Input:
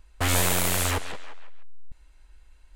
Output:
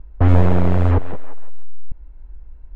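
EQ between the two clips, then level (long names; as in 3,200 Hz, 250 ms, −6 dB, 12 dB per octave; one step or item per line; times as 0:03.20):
Bessel low-pass filter 850 Hz, order 2
low-shelf EQ 430 Hz +10 dB
+5.5 dB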